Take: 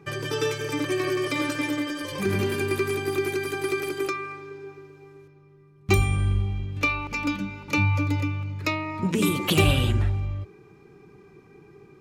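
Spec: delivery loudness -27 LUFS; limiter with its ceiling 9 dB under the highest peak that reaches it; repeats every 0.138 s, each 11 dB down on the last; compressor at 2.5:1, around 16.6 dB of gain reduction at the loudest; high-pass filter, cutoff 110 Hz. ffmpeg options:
-af "highpass=110,acompressor=threshold=-42dB:ratio=2.5,alimiter=level_in=7.5dB:limit=-24dB:level=0:latency=1,volume=-7.5dB,aecho=1:1:138|276|414:0.282|0.0789|0.0221,volume=14.5dB"

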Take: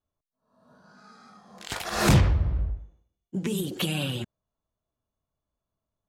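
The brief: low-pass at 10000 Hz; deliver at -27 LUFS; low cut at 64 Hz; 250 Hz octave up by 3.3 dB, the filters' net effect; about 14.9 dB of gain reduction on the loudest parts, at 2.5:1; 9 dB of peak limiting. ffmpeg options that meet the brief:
-af "highpass=64,lowpass=10k,equalizer=f=250:t=o:g=5,acompressor=threshold=-36dB:ratio=2.5,volume=13.5dB,alimiter=limit=-16.5dB:level=0:latency=1"

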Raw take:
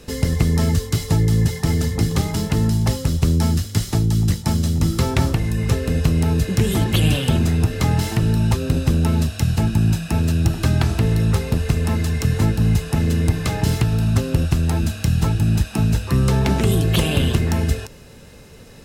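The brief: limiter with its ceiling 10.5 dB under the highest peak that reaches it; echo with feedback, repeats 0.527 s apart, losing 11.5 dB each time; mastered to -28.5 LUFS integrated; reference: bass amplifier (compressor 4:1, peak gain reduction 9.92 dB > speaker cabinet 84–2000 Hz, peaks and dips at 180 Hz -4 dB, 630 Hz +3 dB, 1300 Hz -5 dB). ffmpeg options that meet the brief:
-af "alimiter=limit=-15.5dB:level=0:latency=1,aecho=1:1:527|1054|1581:0.266|0.0718|0.0194,acompressor=threshold=-29dB:ratio=4,highpass=f=84:w=0.5412,highpass=f=84:w=1.3066,equalizer=f=180:t=q:w=4:g=-4,equalizer=f=630:t=q:w=4:g=3,equalizer=f=1.3k:t=q:w=4:g=-5,lowpass=f=2k:w=0.5412,lowpass=f=2k:w=1.3066,volume=5.5dB"

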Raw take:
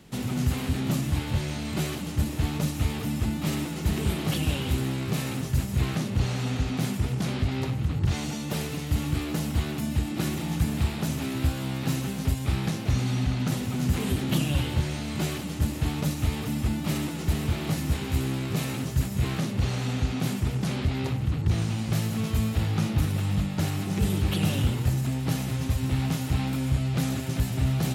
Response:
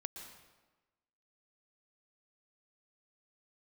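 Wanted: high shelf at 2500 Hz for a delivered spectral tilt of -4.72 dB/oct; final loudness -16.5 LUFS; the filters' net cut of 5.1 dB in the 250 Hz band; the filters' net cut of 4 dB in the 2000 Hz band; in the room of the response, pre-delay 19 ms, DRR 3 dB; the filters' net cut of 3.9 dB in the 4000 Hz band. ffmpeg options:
-filter_complex "[0:a]equalizer=f=250:t=o:g=-7.5,equalizer=f=2k:t=o:g=-5.5,highshelf=f=2.5k:g=6,equalizer=f=4k:t=o:g=-8.5,asplit=2[a][b];[1:a]atrim=start_sample=2205,adelay=19[c];[b][c]afir=irnorm=-1:irlink=0,volume=-0.5dB[d];[a][d]amix=inputs=2:normalize=0,volume=11.5dB"

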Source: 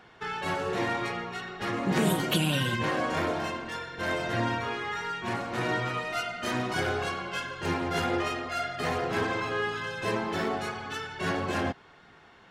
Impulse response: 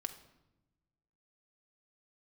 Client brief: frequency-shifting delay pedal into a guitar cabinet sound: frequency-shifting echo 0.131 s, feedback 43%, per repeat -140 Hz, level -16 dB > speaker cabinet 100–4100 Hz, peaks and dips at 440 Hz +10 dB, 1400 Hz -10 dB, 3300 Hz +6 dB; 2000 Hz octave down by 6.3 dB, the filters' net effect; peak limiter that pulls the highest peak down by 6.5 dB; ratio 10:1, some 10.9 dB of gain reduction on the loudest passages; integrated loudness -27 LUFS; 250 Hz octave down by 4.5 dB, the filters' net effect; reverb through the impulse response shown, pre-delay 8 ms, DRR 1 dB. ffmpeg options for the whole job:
-filter_complex "[0:a]equalizer=f=250:t=o:g=-8.5,equalizer=f=2k:t=o:g=-5,acompressor=threshold=-36dB:ratio=10,alimiter=level_in=8.5dB:limit=-24dB:level=0:latency=1,volume=-8.5dB,asplit=2[a][b];[1:a]atrim=start_sample=2205,adelay=8[c];[b][c]afir=irnorm=-1:irlink=0,volume=0.5dB[d];[a][d]amix=inputs=2:normalize=0,asplit=5[e][f][g][h][i];[f]adelay=131,afreqshift=-140,volume=-16dB[j];[g]adelay=262,afreqshift=-280,volume=-23.3dB[k];[h]adelay=393,afreqshift=-420,volume=-30.7dB[l];[i]adelay=524,afreqshift=-560,volume=-38dB[m];[e][j][k][l][m]amix=inputs=5:normalize=0,highpass=100,equalizer=f=440:t=q:w=4:g=10,equalizer=f=1.4k:t=q:w=4:g=-10,equalizer=f=3.3k:t=q:w=4:g=6,lowpass=f=4.1k:w=0.5412,lowpass=f=4.1k:w=1.3066,volume=11dB"

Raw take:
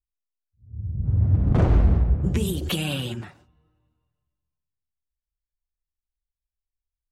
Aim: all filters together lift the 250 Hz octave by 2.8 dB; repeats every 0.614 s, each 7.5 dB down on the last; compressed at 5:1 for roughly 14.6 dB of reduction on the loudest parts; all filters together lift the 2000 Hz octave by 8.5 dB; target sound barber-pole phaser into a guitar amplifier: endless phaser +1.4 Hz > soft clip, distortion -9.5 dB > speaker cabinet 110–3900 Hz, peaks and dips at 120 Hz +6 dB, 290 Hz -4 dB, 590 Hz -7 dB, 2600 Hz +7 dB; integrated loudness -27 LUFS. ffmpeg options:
-filter_complex "[0:a]equalizer=f=250:t=o:g=5.5,equalizer=f=2k:t=o:g=6,acompressor=threshold=-30dB:ratio=5,aecho=1:1:614|1228|1842|2456|3070:0.422|0.177|0.0744|0.0312|0.0131,asplit=2[a][b];[b]afreqshift=1.4[c];[a][c]amix=inputs=2:normalize=1,asoftclip=threshold=-35dB,highpass=110,equalizer=f=120:t=q:w=4:g=6,equalizer=f=290:t=q:w=4:g=-4,equalizer=f=590:t=q:w=4:g=-7,equalizer=f=2.6k:t=q:w=4:g=7,lowpass=f=3.9k:w=0.5412,lowpass=f=3.9k:w=1.3066,volume=14.5dB"

